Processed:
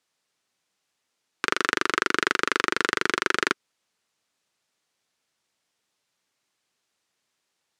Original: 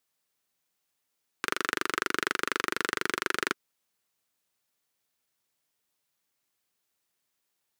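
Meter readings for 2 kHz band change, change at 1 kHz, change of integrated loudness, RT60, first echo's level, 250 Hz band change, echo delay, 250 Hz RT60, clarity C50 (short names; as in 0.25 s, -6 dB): +6.0 dB, +6.0 dB, +6.0 dB, none, none, +5.5 dB, none, none, none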